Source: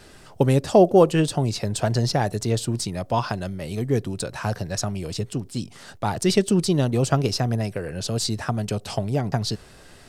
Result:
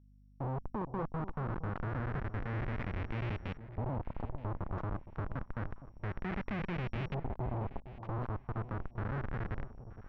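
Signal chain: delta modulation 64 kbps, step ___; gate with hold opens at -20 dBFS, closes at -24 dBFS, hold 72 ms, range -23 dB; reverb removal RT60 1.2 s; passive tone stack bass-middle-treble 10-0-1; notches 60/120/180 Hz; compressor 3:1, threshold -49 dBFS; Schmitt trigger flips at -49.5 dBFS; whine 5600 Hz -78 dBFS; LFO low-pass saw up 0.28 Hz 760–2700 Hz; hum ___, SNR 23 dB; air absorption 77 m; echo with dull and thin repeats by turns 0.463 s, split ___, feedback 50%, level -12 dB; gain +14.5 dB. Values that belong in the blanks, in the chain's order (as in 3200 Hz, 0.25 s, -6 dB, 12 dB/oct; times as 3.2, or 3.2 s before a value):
-25 dBFS, 50 Hz, 880 Hz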